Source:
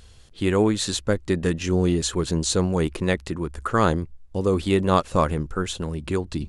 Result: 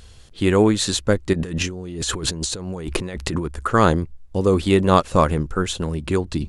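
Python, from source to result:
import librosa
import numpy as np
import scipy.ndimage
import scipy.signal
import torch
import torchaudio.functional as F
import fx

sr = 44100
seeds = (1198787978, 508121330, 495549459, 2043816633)

y = fx.over_compress(x, sr, threshold_db=-31.0, ratio=-1.0, at=(1.33, 3.46))
y = y * librosa.db_to_amplitude(4.0)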